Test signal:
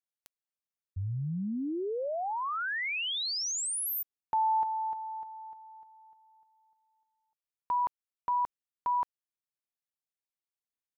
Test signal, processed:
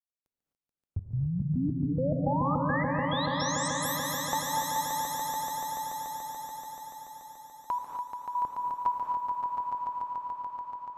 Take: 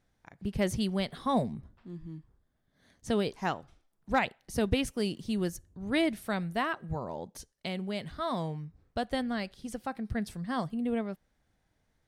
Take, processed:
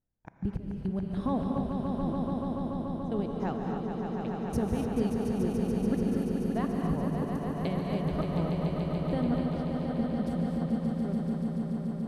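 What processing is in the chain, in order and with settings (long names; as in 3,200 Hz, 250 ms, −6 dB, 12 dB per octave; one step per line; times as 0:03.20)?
noise gate −59 dBFS, range −24 dB
tilt shelving filter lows +8.5 dB
downward compressor 6 to 1, threshold −33 dBFS
gate pattern "xx.x..x." 106 BPM −24 dB
on a send: echo that builds up and dies away 144 ms, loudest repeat 5, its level −7 dB
on the sum: reverb whose tail is shaped and stops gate 280 ms rising, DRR 3 dB
level +4 dB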